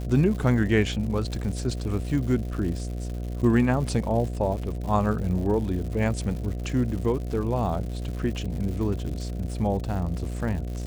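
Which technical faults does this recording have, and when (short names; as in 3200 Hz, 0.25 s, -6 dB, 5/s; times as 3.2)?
buzz 60 Hz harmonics 12 -31 dBFS
crackle 190/s -34 dBFS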